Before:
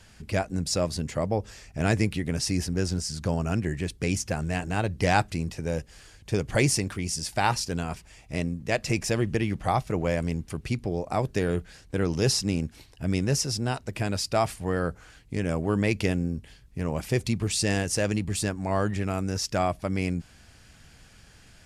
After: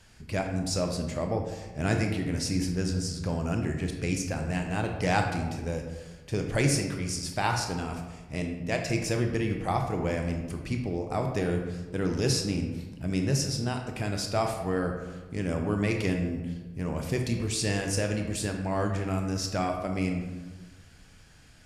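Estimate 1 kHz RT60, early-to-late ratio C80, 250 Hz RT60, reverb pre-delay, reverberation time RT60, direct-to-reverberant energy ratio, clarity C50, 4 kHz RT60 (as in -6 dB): 1.2 s, 7.0 dB, 1.5 s, 18 ms, 1.3 s, 3.0 dB, 5.0 dB, 0.70 s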